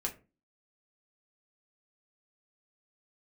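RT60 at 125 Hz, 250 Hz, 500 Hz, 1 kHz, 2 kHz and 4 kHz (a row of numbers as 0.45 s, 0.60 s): 0.45 s, 0.50 s, 0.35 s, 0.30 s, 0.25 s, 0.20 s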